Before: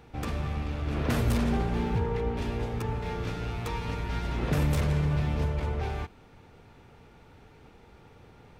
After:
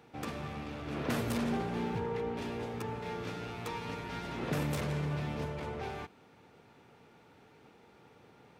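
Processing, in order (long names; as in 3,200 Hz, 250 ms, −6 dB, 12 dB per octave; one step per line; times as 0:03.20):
high-pass filter 160 Hz 12 dB per octave
level −3.5 dB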